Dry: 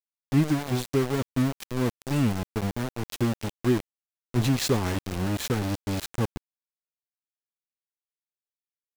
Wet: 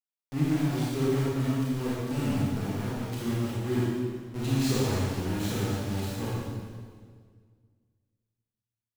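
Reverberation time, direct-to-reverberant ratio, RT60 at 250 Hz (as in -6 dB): 1.8 s, -8.0 dB, 2.1 s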